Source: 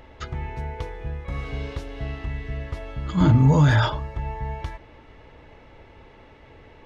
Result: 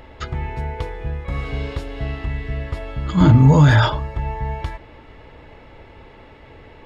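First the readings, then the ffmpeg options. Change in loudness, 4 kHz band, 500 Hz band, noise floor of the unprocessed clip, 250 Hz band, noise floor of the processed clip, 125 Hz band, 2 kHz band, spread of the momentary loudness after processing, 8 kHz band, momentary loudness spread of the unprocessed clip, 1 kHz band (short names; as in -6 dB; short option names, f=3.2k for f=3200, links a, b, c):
+5.0 dB, +5.0 dB, +5.0 dB, -49 dBFS, +5.0 dB, -44 dBFS, +5.0 dB, +5.0 dB, 18 LU, n/a, 18 LU, +5.0 dB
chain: -af "bandreject=f=6k:w=10,volume=5dB"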